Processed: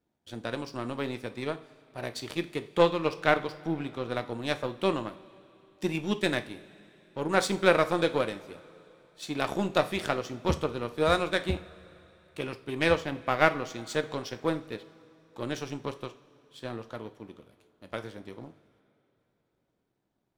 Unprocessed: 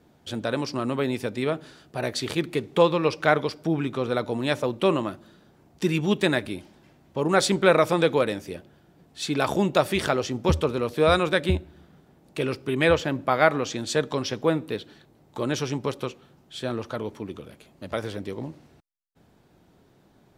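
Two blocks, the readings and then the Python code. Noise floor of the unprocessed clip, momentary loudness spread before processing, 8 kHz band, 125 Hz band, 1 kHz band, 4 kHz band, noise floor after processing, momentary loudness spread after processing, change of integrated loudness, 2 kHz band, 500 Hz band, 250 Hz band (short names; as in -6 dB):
-59 dBFS, 14 LU, -7.5 dB, -7.5 dB, -4.0 dB, -5.0 dB, -77 dBFS, 19 LU, -5.0 dB, -3.5 dB, -5.5 dB, -6.0 dB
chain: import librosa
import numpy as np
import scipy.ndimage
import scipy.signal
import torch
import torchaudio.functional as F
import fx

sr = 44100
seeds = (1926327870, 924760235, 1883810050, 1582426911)

y = fx.power_curve(x, sr, exponent=1.4)
y = fx.rev_double_slope(y, sr, seeds[0], early_s=0.39, late_s=3.4, knee_db=-19, drr_db=9.0)
y = F.gain(torch.from_numpy(y), -1.0).numpy()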